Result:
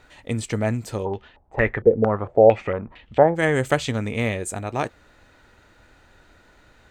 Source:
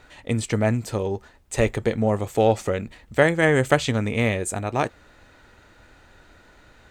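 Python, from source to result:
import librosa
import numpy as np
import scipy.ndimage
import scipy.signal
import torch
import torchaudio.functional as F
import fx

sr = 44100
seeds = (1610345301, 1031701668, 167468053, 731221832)

y = fx.filter_held_lowpass(x, sr, hz=4.4, low_hz=470.0, high_hz=3100.0, at=(1.04, 3.35), fade=0.02)
y = F.gain(torch.from_numpy(y), -2.0).numpy()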